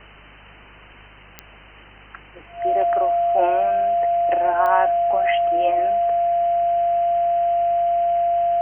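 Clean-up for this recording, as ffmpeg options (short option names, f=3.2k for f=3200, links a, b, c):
-af "adeclick=t=4,bandreject=f=50.6:t=h:w=4,bandreject=f=101.2:t=h:w=4,bandreject=f=151.8:t=h:w=4,bandreject=f=202.4:t=h:w=4,bandreject=f=690:w=30,afwtdn=0.011"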